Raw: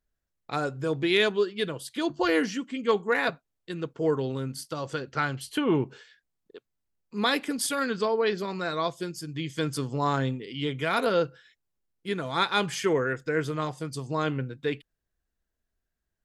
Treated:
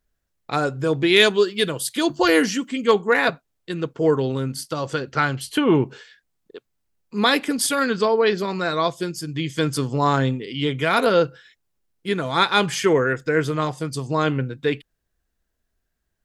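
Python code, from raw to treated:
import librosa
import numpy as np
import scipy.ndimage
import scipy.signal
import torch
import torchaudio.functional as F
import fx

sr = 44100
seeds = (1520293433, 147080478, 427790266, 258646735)

y = fx.high_shelf(x, sr, hz=fx.line((1.16, 4400.0), (2.92, 8000.0)), db=11.0, at=(1.16, 2.92), fade=0.02)
y = y * librosa.db_to_amplitude(7.0)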